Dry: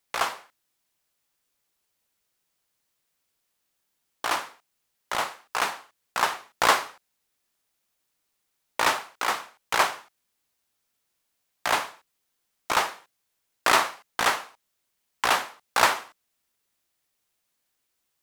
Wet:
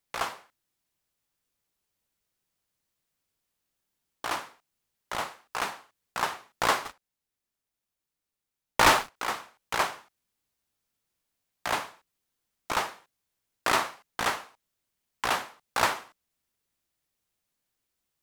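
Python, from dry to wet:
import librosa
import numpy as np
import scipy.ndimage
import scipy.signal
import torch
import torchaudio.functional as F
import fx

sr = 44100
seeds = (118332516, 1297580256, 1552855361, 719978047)

y = fx.leveller(x, sr, passes=3, at=(6.85, 9.16))
y = fx.low_shelf(y, sr, hz=270.0, db=8.5)
y = F.gain(torch.from_numpy(y), -5.5).numpy()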